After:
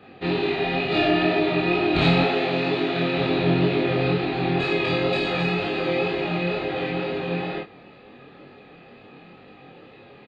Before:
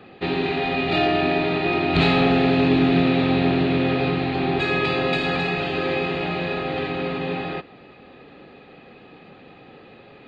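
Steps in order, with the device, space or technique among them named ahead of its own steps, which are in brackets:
0:02.21–0:03.18: high-pass filter 400 Hz 6 dB per octave
double-tracked vocal (double-tracking delay 29 ms −2.5 dB; chorus effect 2.1 Hz, delay 19.5 ms, depth 3.9 ms)

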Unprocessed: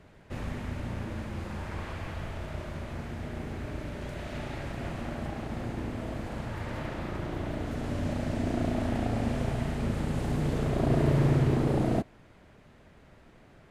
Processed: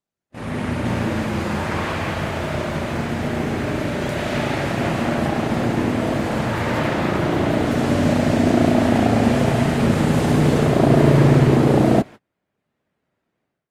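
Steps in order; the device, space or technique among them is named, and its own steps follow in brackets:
video call (high-pass filter 130 Hz 12 dB per octave; automatic gain control gain up to 16.5 dB; noise gate −32 dBFS, range −34 dB; Opus 32 kbit/s 48,000 Hz)

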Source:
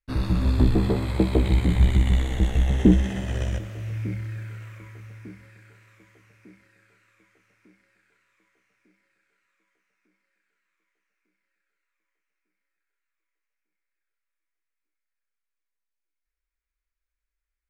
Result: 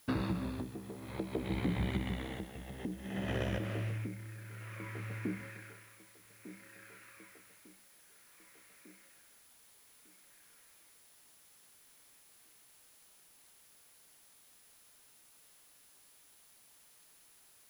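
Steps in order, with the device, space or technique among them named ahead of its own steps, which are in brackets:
medium wave at night (band-pass filter 150–3,500 Hz; downward compressor, threshold −38 dBFS, peak gain reduction 23.5 dB; amplitude tremolo 0.57 Hz, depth 78%; steady tone 10,000 Hz −73 dBFS; white noise bed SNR 21 dB)
level +7 dB

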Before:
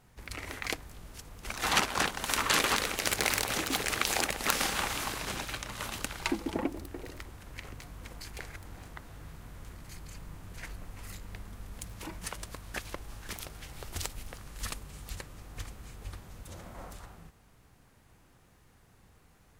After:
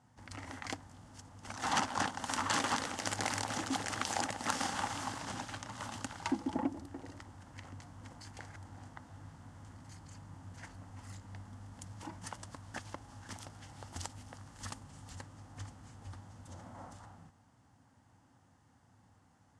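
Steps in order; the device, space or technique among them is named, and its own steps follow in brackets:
car door speaker (loudspeaker in its box 99–8,700 Hz, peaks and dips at 99 Hz +10 dB, 260 Hz +8 dB, 410 Hz −9 dB, 850 Hz +7 dB, 2,400 Hz −9 dB, 3,900 Hz −6 dB)
level −5 dB

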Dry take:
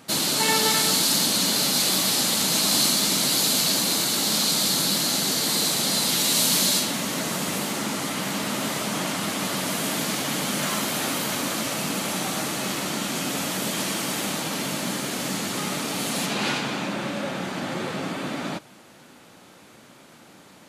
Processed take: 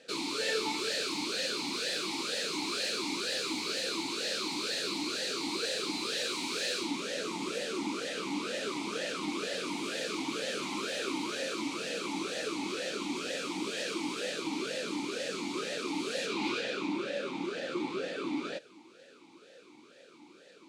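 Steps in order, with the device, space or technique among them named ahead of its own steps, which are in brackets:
flat-topped bell 5,900 Hz +11.5 dB
talk box (tube saturation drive 16 dB, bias 0.45; formant filter swept between two vowels e-u 2.1 Hz)
level +7 dB

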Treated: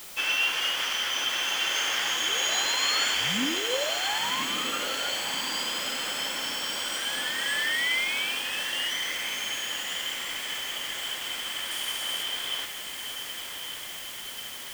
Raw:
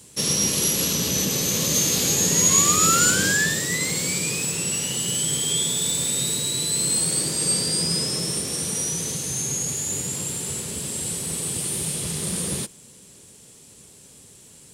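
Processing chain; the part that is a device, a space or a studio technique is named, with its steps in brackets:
split-band scrambled radio (band-splitting scrambler in four parts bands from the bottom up 2413; band-pass filter 350–3,000 Hz; white noise bed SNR 12 dB)
0:11.71–0:12.23: parametric band 10,000 Hz +6 dB 1.3 octaves
feedback delay with all-pass diffusion 1,174 ms, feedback 70%, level −7.5 dB

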